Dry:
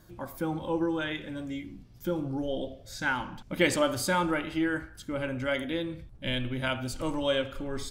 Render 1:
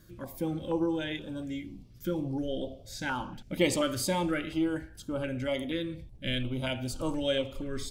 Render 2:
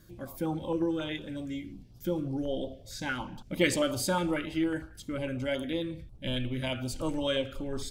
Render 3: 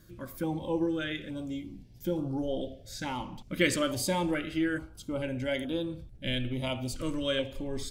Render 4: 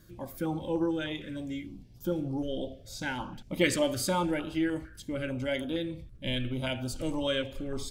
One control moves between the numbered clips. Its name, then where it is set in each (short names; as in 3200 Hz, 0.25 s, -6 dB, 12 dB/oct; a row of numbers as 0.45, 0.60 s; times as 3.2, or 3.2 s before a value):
stepped notch, rate: 4.2, 11, 2.3, 6.6 Hz